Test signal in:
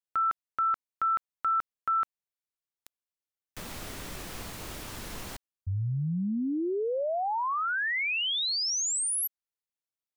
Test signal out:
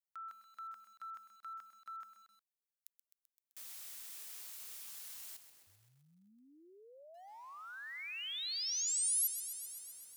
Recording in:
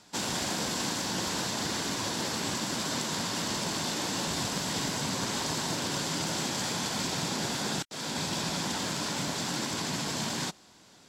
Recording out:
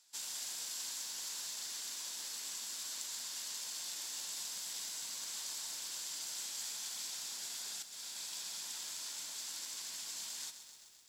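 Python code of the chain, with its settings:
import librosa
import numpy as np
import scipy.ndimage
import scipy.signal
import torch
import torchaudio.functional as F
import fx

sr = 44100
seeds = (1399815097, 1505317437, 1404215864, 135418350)

y = np.diff(x, prepend=0.0)
y = fx.echo_crushed(y, sr, ms=129, feedback_pct=80, bits=9, wet_db=-11)
y = F.gain(torch.from_numpy(y), -6.0).numpy()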